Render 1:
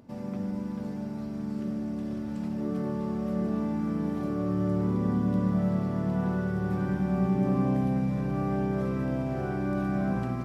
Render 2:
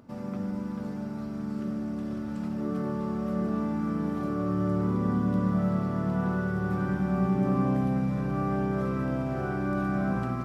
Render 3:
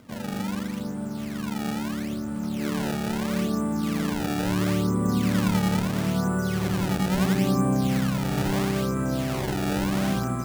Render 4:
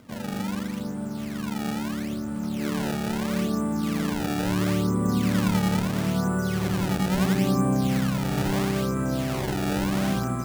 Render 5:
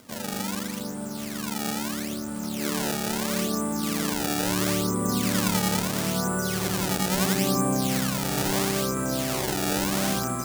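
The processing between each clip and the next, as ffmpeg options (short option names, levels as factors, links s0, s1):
-af "equalizer=f=1300:t=o:w=0.44:g=7.5"
-af "acrusher=samples=24:mix=1:aa=0.000001:lfo=1:lforange=38.4:lforate=0.75,volume=1.41"
-af anull
-af "bass=f=250:g=-7,treble=f=4000:g=9,volume=1.19"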